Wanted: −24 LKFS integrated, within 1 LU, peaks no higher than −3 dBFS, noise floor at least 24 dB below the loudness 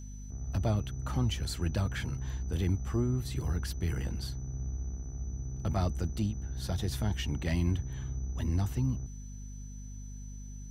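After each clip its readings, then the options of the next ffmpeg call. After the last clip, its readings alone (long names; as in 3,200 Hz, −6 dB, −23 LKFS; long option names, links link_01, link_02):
mains hum 50 Hz; hum harmonics up to 250 Hz; level of the hum −41 dBFS; interfering tone 6,000 Hz; level of the tone −54 dBFS; integrated loudness −34.0 LKFS; sample peak −18.0 dBFS; target loudness −24.0 LKFS
→ -af "bandreject=frequency=50:width_type=h:width=4,bandreject=frequency=100:width_type=h:width=4,bandreject=frequency=150:width_type=h:width=4,bandreject=frequency=200:width_type=h:width=4,bandreject=frequency=250:width_type=h:width=4"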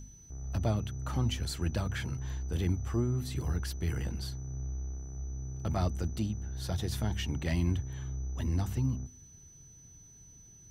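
mains hum none found; interfering tone 6,000 Hz; level of the tone −54 dBFS
→ -af "bandreject=frequency=6000:width=30"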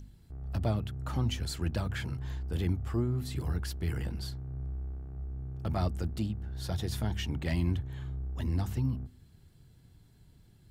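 interfering tone none found; integrated loudness −34.5 LKFS; sample peak −17.5 dBFS; target loudness −24.0 LKFS
→ -af "volume=10.5dB"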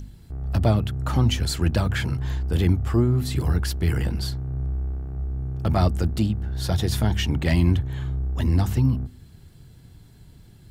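integrated loudness −24.0 LKFS; sample peak −7.0 dBFS; background noise floor −49 dBFS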